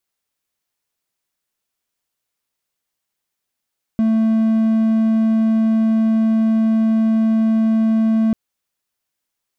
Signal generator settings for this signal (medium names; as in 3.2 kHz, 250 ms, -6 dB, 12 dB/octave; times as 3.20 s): tone triangle 222 Hz -10.5 dBFS 4.34 s